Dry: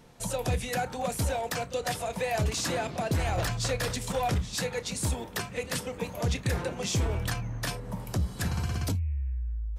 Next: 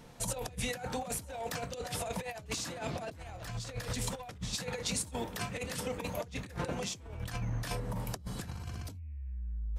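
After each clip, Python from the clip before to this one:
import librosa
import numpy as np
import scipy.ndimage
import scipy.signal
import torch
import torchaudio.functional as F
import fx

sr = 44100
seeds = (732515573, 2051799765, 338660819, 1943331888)

y = fx.over_compress(x, sr, threshold_db=-34.0, ratio=-0.5)
y = fx.notch(y, sr, hz=380.0, q=12.0)
y = y * 10.0 ** (-3.0 / 20.0)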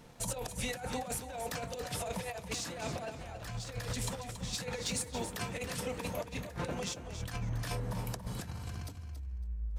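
y = fx.leveller(x, sr, passes=1)
y = fx.echo_feedback(y, sr, ms=278, feedback_pct=20, wet_db=-10.0)
y = y * 10.0 ** (-4.5 / 20.0)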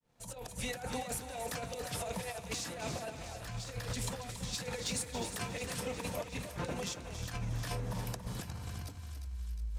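y = fx.fade_in_head(x, sr, length_s=0.72)
y = fx.echo_thinned(y, sr, ms=359, feedback_pct=67, hz=1200.0, wet_db=-9.5)
y = y * 10.0 ** (-1.0 / 20.0)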